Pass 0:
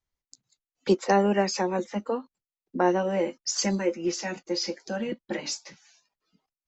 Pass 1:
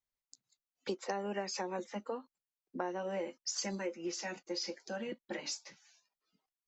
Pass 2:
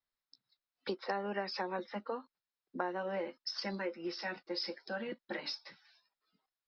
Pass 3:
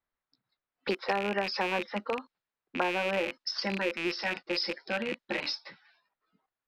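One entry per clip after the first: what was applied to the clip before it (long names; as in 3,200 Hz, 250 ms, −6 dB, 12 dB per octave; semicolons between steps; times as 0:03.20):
low-shelf EQ 260 Hz −8 dB; downward compressor 6 to 1, threshold −27 dBFS, peak gain reduction 9.5 dB; level −6.5 dB
Chebyshev low-pass with heavy ripple 5,400 Hz, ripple 6 dB; level +5 dB
loose part that buzzes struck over −56 dBFS, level −29 dBFS; low-pass that shuts in the quiet parts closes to 2,000 Hz, open at −33.5 dBFS; level +6.5 dB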